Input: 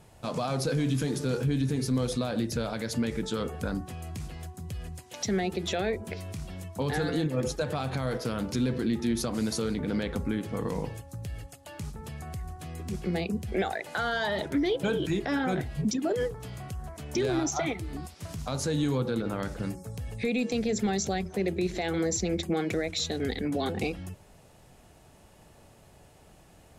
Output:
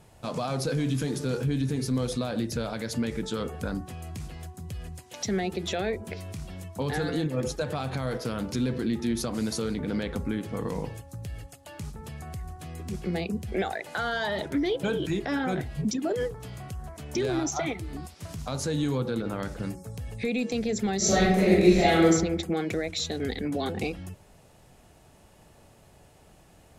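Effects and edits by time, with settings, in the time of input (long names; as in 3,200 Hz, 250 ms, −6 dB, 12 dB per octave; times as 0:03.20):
0:20.97–0:22.03: thrown reverb, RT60 0.87 s, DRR −10 dB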